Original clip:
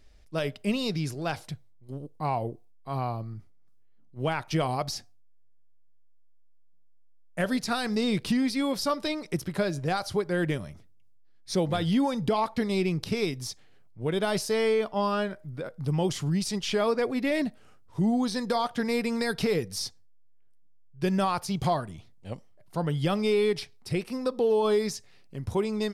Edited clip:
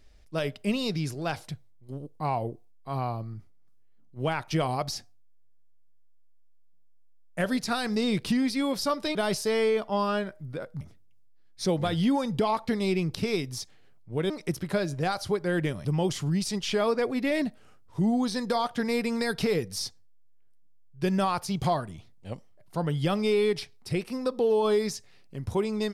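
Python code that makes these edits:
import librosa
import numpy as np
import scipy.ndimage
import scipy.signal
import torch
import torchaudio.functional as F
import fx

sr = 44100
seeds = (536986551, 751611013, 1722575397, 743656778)

y = fx.edit(x, sr, fx.swap(start_s=9.15, length_s=1.55, other_s=14.19, other_length_s=1.66), tone=tone)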